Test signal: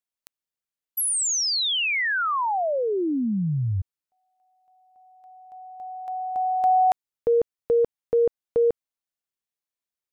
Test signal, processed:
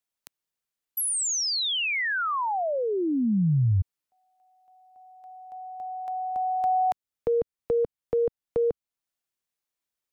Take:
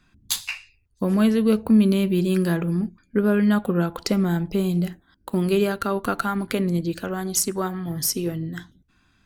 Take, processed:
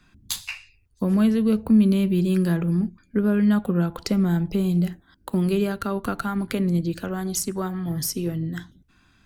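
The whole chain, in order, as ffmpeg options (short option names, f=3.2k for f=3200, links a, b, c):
-filter_complex "[0:a]acrossover=split=210[a][b];[b]acompressor=threshold=-39dB:ratio=1.5:attack=7:release=549:knee=2.83:detection=peak[c];[a][c]amix=inputs=2:normalize=0,volume=3dB"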